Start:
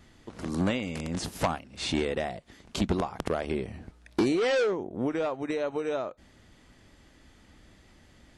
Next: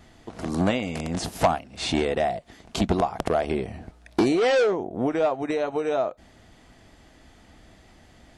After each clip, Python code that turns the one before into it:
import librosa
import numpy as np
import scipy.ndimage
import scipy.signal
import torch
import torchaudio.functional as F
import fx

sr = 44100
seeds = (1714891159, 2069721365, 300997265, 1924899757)

y = fx.peak_eq(x, sr, hz=680.0, db=8.0, octaves=0.55)
y = fx.notch(y, sr, hz=570.0, q=12.0)
y = y * librosa.db_to_amplitude(3.5)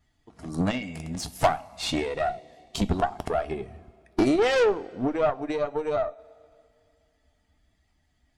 y = fx.bin_expand(x, sr, power=1.5)
y = fx.rev_double_slope(y, sr, seeds[0], early_s=0.22, late_s=2.5, knee_db=-21, drr_db=9.5)
y = fx.cheby_harmonics(y, sr, harmonics=(4, 8), levels_db=(-18, -29), full_scale_db=-9.5)